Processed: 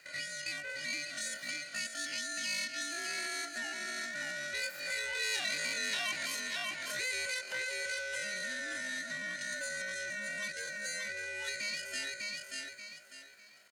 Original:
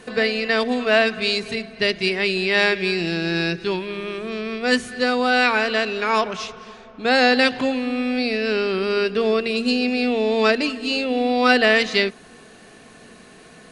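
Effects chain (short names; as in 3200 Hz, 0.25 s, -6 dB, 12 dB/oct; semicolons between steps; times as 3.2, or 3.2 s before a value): Doppler pass-by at 5.72, 6 m/s, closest 5.9 m; notch comb 1200 Hz; ring modulator 530 Hz; in parallel at +2.5 dB: limiter -18.5 dBFS, peak gain reduction 8 dB; on the sum: high shelf 6700 Hz -8.5 dB; on a send: feedback echo 0.593 s, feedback 27%, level -7 dB; on the sum: compressor 2.5:1, threshold -33 dBFS, peak gain reduction 12.5 dB; HPF 670 Hz 6 dB/oct; pitch shift +11.5 st; core saturation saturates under 3400 Hz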